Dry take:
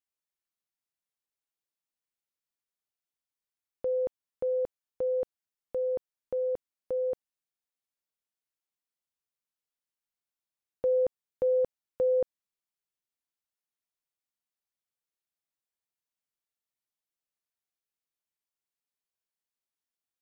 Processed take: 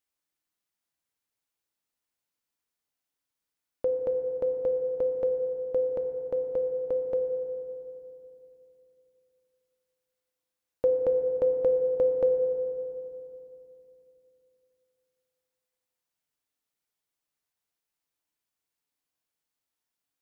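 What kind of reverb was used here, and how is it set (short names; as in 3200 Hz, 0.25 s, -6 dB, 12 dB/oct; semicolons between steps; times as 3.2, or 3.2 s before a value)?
FDN reverb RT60 2.9 s, low-frequency decay 1.2×, high-frequency decay 0.3×, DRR 5.5 dB; gain +4.5 dB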